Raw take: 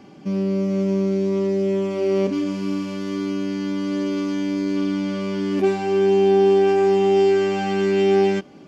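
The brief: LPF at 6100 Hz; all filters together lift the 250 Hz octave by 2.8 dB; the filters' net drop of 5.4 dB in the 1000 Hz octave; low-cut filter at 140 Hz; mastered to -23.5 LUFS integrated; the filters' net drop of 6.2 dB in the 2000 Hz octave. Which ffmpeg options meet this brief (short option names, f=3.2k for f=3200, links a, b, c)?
-af "highpass=140,lowpass=6.1k,equalizer=f=250:t=o:g=5.5,equalizer=f=1k:t=o:g=-7.5,equalizer=f=2k:t=o:g=-6,volume=-4.5dB"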